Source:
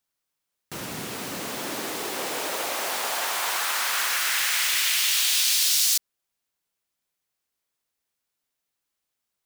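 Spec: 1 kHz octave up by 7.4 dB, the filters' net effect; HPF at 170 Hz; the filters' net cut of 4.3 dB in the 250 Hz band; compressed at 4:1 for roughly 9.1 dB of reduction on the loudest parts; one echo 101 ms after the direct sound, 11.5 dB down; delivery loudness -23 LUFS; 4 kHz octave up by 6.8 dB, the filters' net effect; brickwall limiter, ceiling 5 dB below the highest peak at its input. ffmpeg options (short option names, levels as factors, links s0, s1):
-af "highpass=170,equalizer=f=250:t=o:g=-5.5,equalizer=f=1000:t=o:g=9,equalizer=f=4000:t=o:g=8,acompressor=threshold=0.0562:ratio=4,alimiter=limit=0.112:level=0:latency=1,aecho=1:1:101:0.266,volume=1.58"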